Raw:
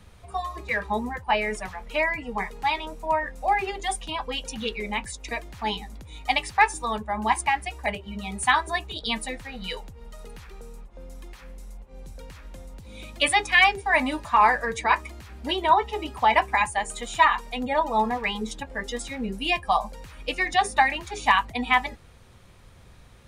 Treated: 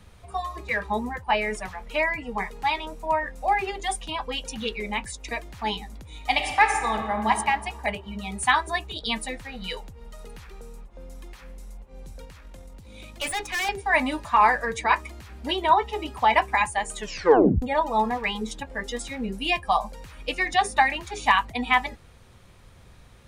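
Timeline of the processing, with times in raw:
0:06.15–0:07.30: thrown reverb, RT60 1.6 s, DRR 4.5 dB
0:12.25–0:13.69: tube saturation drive 25 dB, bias 0.55
0:16.96: tape stop 0.66 s

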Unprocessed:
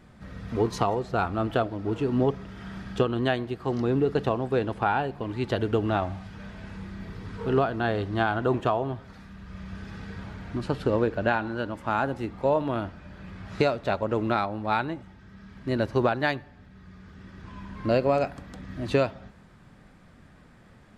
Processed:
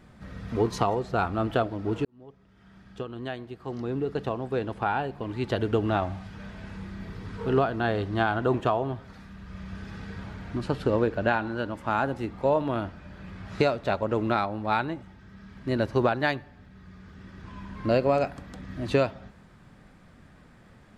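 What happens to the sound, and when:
0:02.05–0:05.76: fade in

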